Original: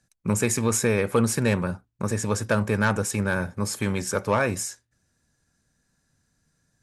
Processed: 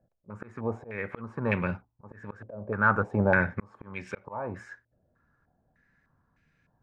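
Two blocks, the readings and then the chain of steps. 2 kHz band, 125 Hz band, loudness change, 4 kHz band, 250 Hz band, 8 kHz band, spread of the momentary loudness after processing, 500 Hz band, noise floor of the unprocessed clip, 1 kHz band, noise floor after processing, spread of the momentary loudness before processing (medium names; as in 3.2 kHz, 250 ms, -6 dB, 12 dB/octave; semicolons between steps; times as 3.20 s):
-1.0 dB, -7.5 dB, -4.5 dB, under -20 dB, -7.5 dB, under -35 dB, 21 LU, -7.0 dB, -73 dBFS, -2.0 dB, -74 dBFS, 7 LU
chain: slow attack 717 ms; step-sequenced low-pass 3.3 Hz 610–2400 Hz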